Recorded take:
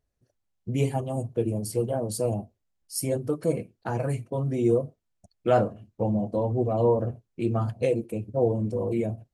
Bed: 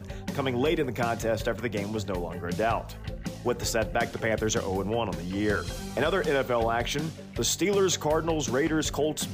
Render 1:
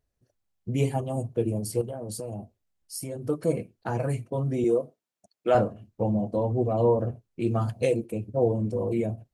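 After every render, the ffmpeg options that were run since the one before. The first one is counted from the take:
-filter_complex "[0:a]asettb=1/sr,asplit=3[s0][s1][s2];[s0]atrim=end=1.814[s3];[s1]atrim=start=1.81:end=3.22,asetpts=PTS-STARTPTS,afade=t=in:d=0.004:c=qsin,afade=t=out:st=1.406:d=0.004:c=qsin,acompressor=threshold=0.0282:ratio=6:attack=3.2:release=140:knee=1:detection=peak[s4];[s2]atrim=start=3.216[s5];[s3][s4]acrossfade=d=0.004:c1=hsin:c2=qsin[s6];[s6][s5]acrossfade=d=0.004:c1=qsin:c2=hsin,asettb=1/sr,asplit=3[s7][s8][s9];[s7]atrim=end=4.644[s10];[s8]atrim=start=4.64:end=5.55,asetpts=PTS-STARTPTS,afade=t=in:d=0.004:c=qsin,afade=t=out:st=0.906:d=0.004:c=qsin,highpass=270[s11];[s9]atrim=start=5.546[s12];[s10][s11]acrossfade=d=0.004:c1=hsin:c2=qsin[s13];[s13][s12]acrossfade=d=0.004:c1=qsin:c2=hsin,asettb=1/sr,asplit=3[s14][s15][s16];[s14]atrim=end=7.464[s17];[s15]atrim=start=7.46:end=7.97,asetpts=PTS-STARTPTS,afade=t=in:d=0.004:c=qsin,afade=t=out:st=0.506:d=0.004:c=qsin,highshelf=f=3300:g=7[s18];[s16]atrim=start=7.966[s19];[s17][s18]acrossfade=d=0.004:c1=hsin:c2=qsin[s20];[s20][s19]acrossfade=d=0.004:c1=qsin:c2=hsin"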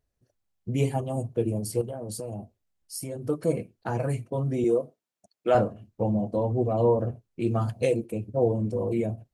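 -af anull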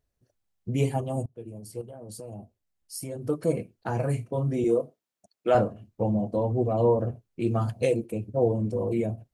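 -filter_complex "[0:a]asettb=1/sr,asplit=3[s0][s1][s2];[s0]atrim=end=3.904[s3];[s1]atrim=start=3.9:end=4.82,asetpts=PTS-STARTPTS,afade=t=in:d=0.004:c=qsin,afade=t=out:st=0.916:d=0.004:c=qsin,asplit=2[s4][s5];[s5]adelay=35,volume=0.266[s6];[s4][s6]amix=inputs=2:normalize=0,atrim=end_sample=40572[s7];[s2]atrim=start=4.816[s8];[s3][s7]acrossfade=d=0.004:c1=hsin:c2=qsin[s9];[s9][s8]acrossfade=d=0.004:c1=qsin:c2=hsin,asplit=2[s10][s11];[s10]atrim=end=1.26,asetpts=PTS-STARTPTS,afade=t=out:st=1.256:d=0.004:c=hsin:silence=0.105925[s12];[s11]atrim=start=1.26,asetpts=PTS-STARTPTS,afade=t=in:d=1.99:silence=0.105925[s13];[s12][s13]concat=n=2:v=0:a=1"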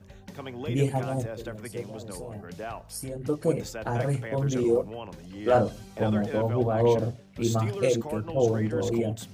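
-filter_complex "[1:a]volume=0.299[s0];[0:a][s0]amix=inputs=2:normalize=0"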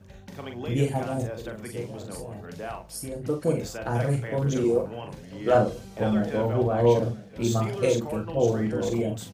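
-filter_complex "[0:a]asplit=2[s0][s1];[s1]adelay=42,volume=0.501[s2];[s0][s2]amix=inputs=2:normalize=0,aecho=1:1:993:0.1"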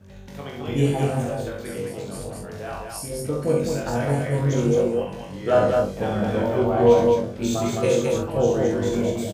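-filter_complex "[0:a]asplit=2[s0][s1];[s1]adelay=21,volume=0.631[s2];[s0][s2]amix=inputs=2:normalize=0,aecho=1:1:67.06|212.8:0.631|0.708"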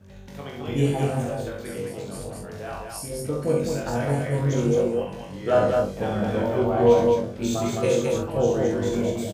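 -af "volume=0.841"

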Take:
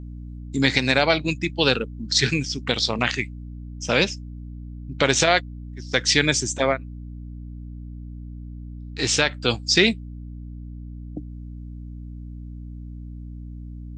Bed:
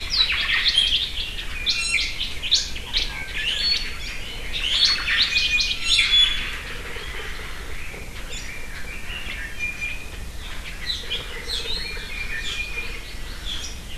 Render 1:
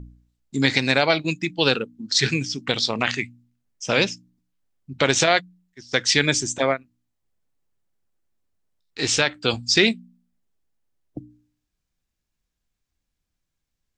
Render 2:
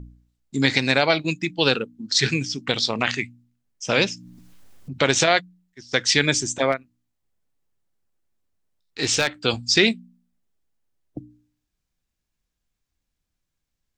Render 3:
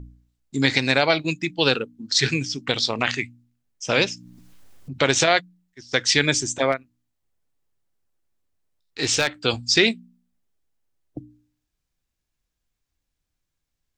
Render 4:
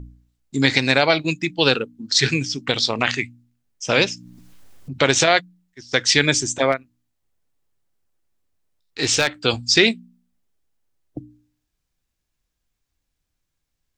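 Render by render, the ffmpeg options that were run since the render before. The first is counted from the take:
-af "bandreject=f=60:t=h:w=4,bandreject=f=120:t=h:w=4,bandreject=f=180:t=h:w=4,bandreject=f=240:t=h:w=4,bandreject=f=300:t=h:w=4"
-filter_complex "[0:a]asettb=1/sr,asplit=3[s0][s1][s2];[s0]atrim=end=3.954[s3];[s1]atrim=start=3.95:end=4.99,asetpts=PTS-STARTPTS,afade=t=in:d=0.004:c=qsin,afade=t=out:st=1.036:d=0.004:c=qsin,acompressor=mode=upward:threshold=0.0501:ratio=2.5:attack=3.2:release=140:knee=2.83:detection=peak[s4];[s2]atrim=start=4.986[s5];[s3][s4]acrossfade=d=0.004:c1=hsin:c2=qsin[s6];[s6][s5]acrossfade=d=0.004:c1=qsin:c2=hsin,asettb=1/sr,asplit=3[s7][s8][s9];[s7]atrim=end=6.724[s10];[s8]atrim=start=6.72:end=9.28,asetpts=PTS-STARTPTS,afade=t=in:d=0.004:c=qsin,afade=t=out:st=2.556:d=0.004:c=qsin,asoftclip=type=hard:threshold=0.266[s11];[s9]atrim=start=9.276[s12];[s10][s11]acrossfade=d=0.004:c1=hsin:c2=qsin[s13];[s13][s12]acrossfade=d=0.004:c1=qsin:c2=hsin"
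-af "equalizer=f=200:w=6.3:g=-6.5"
-af "volume=1.33,alimiter=limit=0.891:level=0:latency=1"

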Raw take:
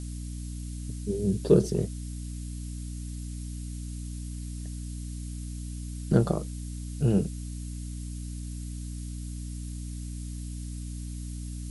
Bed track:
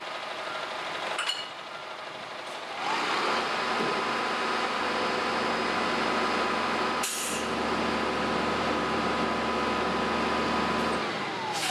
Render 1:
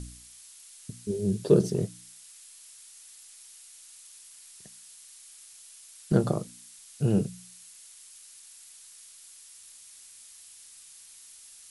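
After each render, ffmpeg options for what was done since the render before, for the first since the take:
-af "bandreject=f=60:t=h:w=4,bandreject=f=120:t=h:w=4,bandreject=f=180:t=h:w=4,bandreject=f=240:t=h:w=4,bandreject=f=300:t=h:w=4"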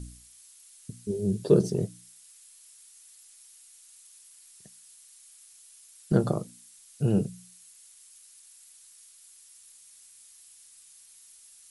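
-af "afftdn=nr=6:nf=-51"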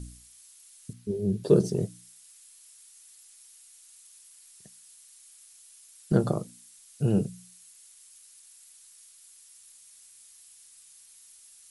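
-filter_complex "[0:a]asettb=1/sr,asplit=3[s0][s1][s2];[s0]atrim=end=0.934[s3];[s1]atrim=start=0.93:end=1.44,asetpts=PTS-STARTPTS,afade=t=in:d=0.004:c=qsin,afade=t=out:st=0.506:d=0.004:c=qsin,equalizer=f=8100:t=o:w=1.3:g=-10[s4];[s2]atrim=start=1.436[s5];[s3][s4]acrossfade=d=0.004:c1=hsin:c2=qsin[s6];[s6][s5]acrossfade=d=0.004:c1=qsin:c2=hsin"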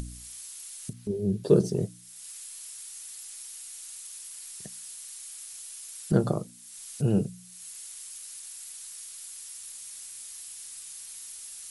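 -af "acompressor=mode=upward:threshold=0.0282:ratio=2.5"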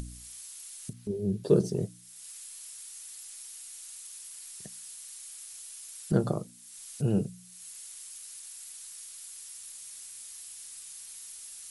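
-af "volume=0.75"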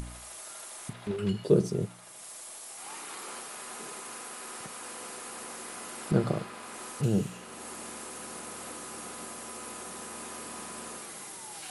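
-filter_complex "[1:a]volume=0.15[s0];[0:a][s0]amix=inputs=2:normalize=0"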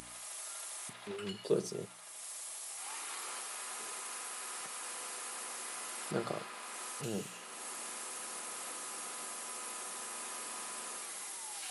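-af "highpass=f=970:p=1,bandreject=f=1500:w=27"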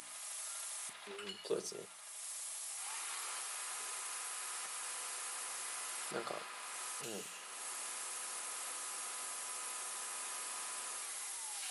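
-af "highpass=f=830:p=1"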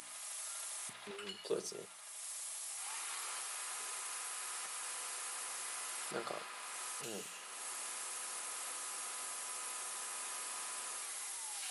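-filter_complex "[0:a]asettb=1/sr,asplit=3[s0][s1][s2];[s0]atrim=end=0.594[s3];[s1]atrim=start=0.59:end=1.11,asetpts=PTS-STARTPTS,afade=t=in:d=0.004:c=qsin,afade=t=out:st=0.516:d=0.004:c=qsin,equalizer=f=64:w=0.4:g=14[s4];[s2]atrim=start=1.106[s5];[s3][s4]acrossfade=d=0.004:c1=hsin:c2=qsin[s6];[s6][s5]acrossfade=d=0.004:c1=qsin:c2=hsin"

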